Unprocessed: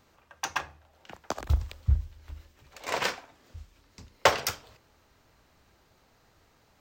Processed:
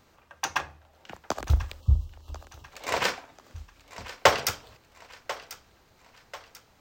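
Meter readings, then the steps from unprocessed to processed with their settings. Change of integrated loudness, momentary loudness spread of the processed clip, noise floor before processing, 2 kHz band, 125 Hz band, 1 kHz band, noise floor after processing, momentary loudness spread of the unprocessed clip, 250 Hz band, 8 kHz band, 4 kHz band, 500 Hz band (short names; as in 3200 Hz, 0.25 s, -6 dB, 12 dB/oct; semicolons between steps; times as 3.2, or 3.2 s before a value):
+2.0 dB, 23 LU, -65 dBFS, +2.5 dB, +2.5 dB, +2.5 dB, -61 dBFS, 21 LU, +2.5 dB, +2.5 dB, +2.5 dB, +2.5 dB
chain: spectral delete 1.8–2.64, 1300–2600 Hz; on a send: thinning echo 1.041 s, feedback 43%, high-pass 420 Hz, level -15 dB; on the sum: gain +2.5 dB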